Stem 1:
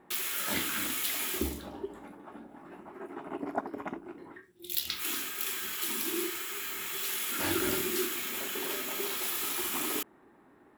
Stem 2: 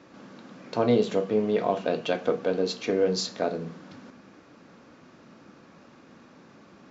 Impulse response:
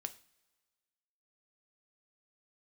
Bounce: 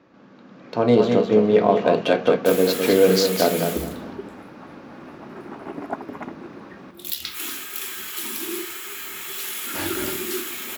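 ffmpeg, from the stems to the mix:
-filter_complex "[0:a]adelay=2350,volume=-9dB[a];[1:a]adynamicsmooth=sensitivity=3.5:basefreq=4.5k,volume=-3dB,asplit=2[b][c];[c]volume=-6.5dB,aecho=0:1:207|414|621|828:1|0.23|0.0529|0.0122[d];[a][b][d]amix=inputs=3:normalize=0,dynaudnorm=f=230:g=7:m=12.5dB"

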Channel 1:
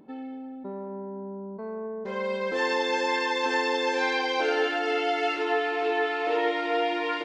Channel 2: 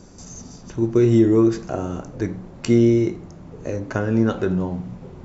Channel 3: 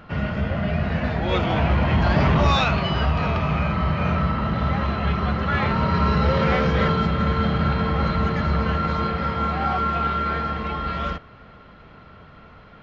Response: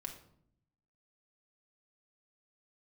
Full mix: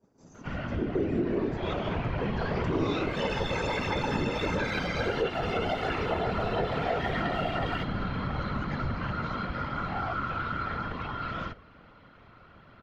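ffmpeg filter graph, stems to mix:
-filter_complex "[0:a]aecho=1:1:7.1:0.76,aphaser=in_gain=1:out_gain=1:delay=4.4:decay=0.49:speed=1.5:type=sinusoidal,adelay=600,volume=1.5dB[a];[1:a]lowpass=f=1.1k:p=1,agate=range=-33dB:threshold=-37dB:ratio=3:detection=peak,highpass=190,volume=0.5dB[b];[2:a]bandreject=f=50:t=h:w=6,bandreject=f=100:t=h:w=6,bandreject=f=150:t=h:w=6,bandreject=f=200:t=h:w=6,bandreject=f=250:t=h:w=6,bandreject=f=300:t=h:w=6,bandreject=f=350:t=h:w=6,bandreject=f=400:t=h:w=6,bandreject=f=450:t=h:w=6,adelay=350,volume=-1.5dB[c];[a][b][c]amix=inputs=3:normalize=0,afftfilt=real='hypot(re,im)*cos(2*PI*random(0))':imag='hypot(re,im)*sin(2*PI*random(1))':win_size=512:overlap=0.75,acompressor=threshold=-28dB:ratio=2.5"

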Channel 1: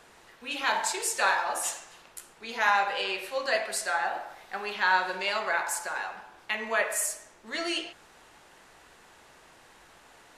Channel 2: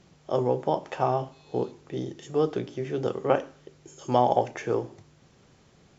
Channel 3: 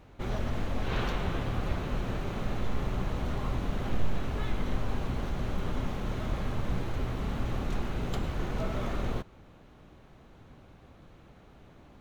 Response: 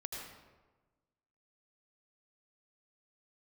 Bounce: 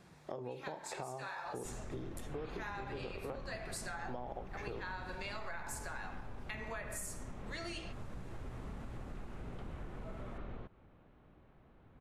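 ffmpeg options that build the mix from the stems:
-filter_complex "[0:a]dynaudnorm=f=290:g=11:m=6.5dB,volume=-11dB[a];[1:a]lowpass=4.3k,volume=-3.5dB[b];[2:a]lowpass=2.5k,alimiter=limit=-24dB:level=0:latency=1:release=146,adelay=1450,volume=-8.5dB[c];[a][b]amix=inputs=2:normalize=0,bandreject=f=3k:w=9.7,acompressor=threshold=-34dB:ratio=6,volume=0dB[d];[c][d]amix=inputs=2:normalize=0,acompressor=threshold=-42dB:ratio=2.5"

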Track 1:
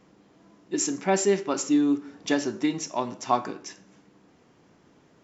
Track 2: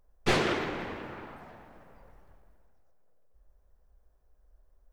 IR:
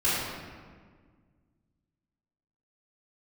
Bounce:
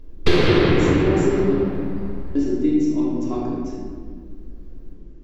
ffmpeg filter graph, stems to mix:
-filter_complex "[0:a]volume=-18dB,asplit=3[a][b][c];[a]atrim=end=1.54,asetpts=PTS-STARTPTS,afade=t=out:st=1.536:d=0.004:c=hsin[d];[b]atrim=start=1.54:end=2.35,asetpts=PTS-STARTPTS,volume=0[e];[c]atrim=start=2.35,asetpts=PTS-STARTPTS,afade=t=in:d=0.004:c=hsin[f];[d][e][f]concat=n=3:v=0:a=1,asplit=2[g][h];[h]volume=-3dB[i];[1:a]equalizer=f=250:t=o:w=1:g=-9,equalizer=f=1k:t=o:w=1:g=5,equalizer=f=2k:t=o:w=1:g=3,equalizer=f=4k:t=o:w=1:g=10,equalizer=f=8k:t=o:w=1:g=-4,volume=3dB,asplit=2[j][k];[k]volume=-7.5dB[l];[2:a]atrim=start_sample=2205[m];[i][l]amix=inputs=2:normalize=0[n];[n][m]afir=irnorm=-1:irlink=0[o];[g][j][o]amix=inputs=3:normalize=0,lowshelf=f=530:t=q:w=1.5:g=13.5,acompressor=threshold=-12dB:ratio=4"

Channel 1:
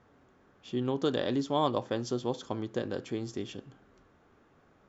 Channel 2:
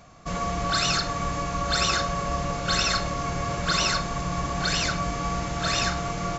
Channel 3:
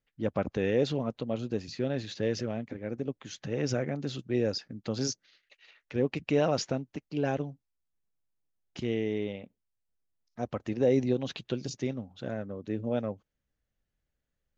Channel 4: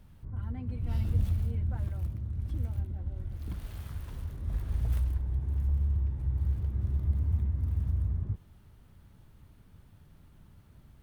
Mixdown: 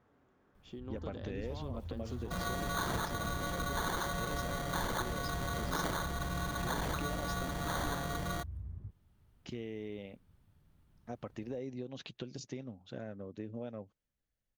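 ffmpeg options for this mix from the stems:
-filter_complex "[0:a]highshelf=f=4.2k:g=-6,alimiter=limit=-23dB:level=0:latency=1:release=237,acompressor=threshold=-37dB:ratio=4,volume=-7dB[a];[1:a]acrusher=samples=17:mix=1:aa=0.000001,adelay=2050,volume=-6dB[b];[2:a]acompressor=threshold=-32dB:ratio=6,adelay=700,volume=-5.5dB[c];[3:a]alimiter=level_in=1dB:limit=-24dB:level=0:latency=1:release=421,volume=-1dB,adelay=550,volume=-10.5dB[d];[a][b][c][d]amix=inputs=4:normalize=0,acompressor=threshold=-34dB:ratio=2.5"

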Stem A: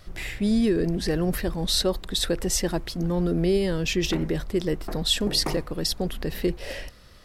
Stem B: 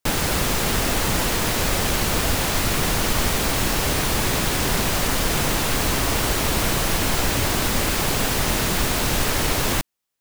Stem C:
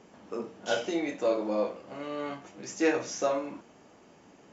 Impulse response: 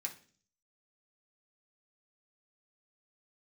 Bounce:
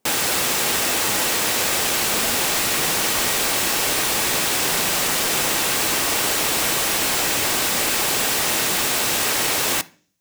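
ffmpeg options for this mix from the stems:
-filter_complex "[0:a]adelay=1700,volume=-17dB[a];[1:a]highpass=f=560:p=1,equalizer=f=1.4k:t=o:w=1.6:g=-2,volume=2dB,asplit=2[b][c];[c]volume=-7.5dB[d];[2:a]volume=-19.5dB[e];[3:a]atrim=start_sample=2205[f];[d][f]afir=irnorm=-1:irlink=0[g];[a][b][e][g]amix=inputs=4:normalize=0"

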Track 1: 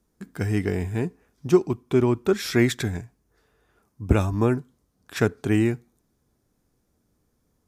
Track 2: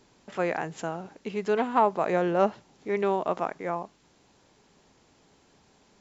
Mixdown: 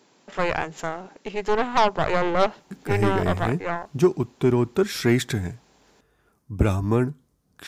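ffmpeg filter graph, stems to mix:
-filter_complex "[0:a]adelay=2500,volume=0.5dB[a];[1:a]highpass=220,aeval=exprs='0.335*(cos(1*acos(clip(val(0)/0.335,-1,1)))-cos(1*PI/2))+0.075*(cos(6*acos(clip(val(0)/0.335,-1,1)))-cos(6*PI/2))':c=same,volume=3dB[b];[a][b]amix=inputs=2:normalize=0,equalizer=f=150:t=o:w=0.25:g=6,asoftclip=type=tanh:threshold=-7dB"

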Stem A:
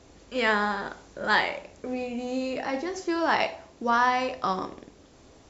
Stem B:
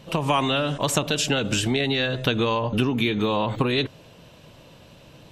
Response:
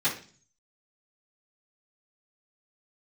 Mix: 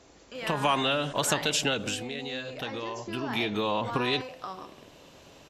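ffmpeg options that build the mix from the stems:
-filter_complex "[0:a]acompressor=threshold=-43dB:ratio=2,volume=0dB[a];[1:a]acontrast=34,adelay=350,volume=1dB,afade=t=out:st=1.69:d=0.36:silence=0.334965,afade=t=in:st=3.09:d=0.38:silence=0.375837[b];[a][b]amix=inputs=2:normalize=0,lowshelf=f=250:g=-8"

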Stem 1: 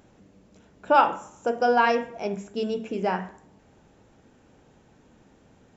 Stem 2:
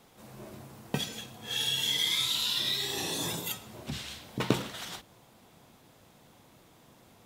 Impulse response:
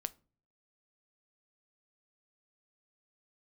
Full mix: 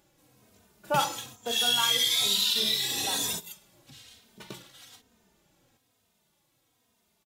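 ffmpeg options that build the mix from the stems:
-filter_complex "[0:a]volume=-9dB,asplit=2[a][b];[1:a]volume=-0.5dB[c];[b]apad=whole_len=319755[d];[c][d]sidechaingate=range=-14dB:threshold=-55dB:ratio=16:detection=peak[e];[a][e]amix=inputs=2:normalize=0,highshelf=f=2.3k:g=10.5,asplit=2[f][g];[g]adelay=3,afreqshift=-1.1[h];[f][h]amix=inputs=2:normalize=1"

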